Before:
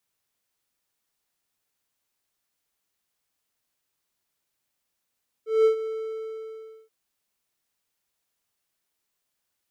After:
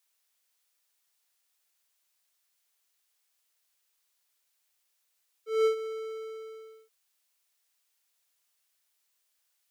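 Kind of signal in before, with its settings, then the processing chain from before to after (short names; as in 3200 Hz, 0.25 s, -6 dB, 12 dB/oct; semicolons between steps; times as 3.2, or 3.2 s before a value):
ADSR triangle 442 Hz, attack 0.189 s, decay 0.103 s, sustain -13.5 dB, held 0.39 s, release 1.04 s -12 dBFS
HPF 400 Hz 24 dB/oct; tilt shelf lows -4.5 dB, about 1400 Hz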